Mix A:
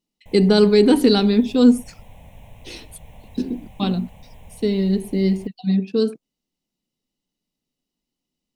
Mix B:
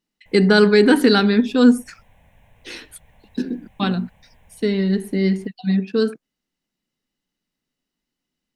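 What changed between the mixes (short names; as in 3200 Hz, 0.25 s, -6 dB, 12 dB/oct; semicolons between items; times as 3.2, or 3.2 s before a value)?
background -11.0 dB; master: add bell 1600 Hz +14 dB 0.73 oct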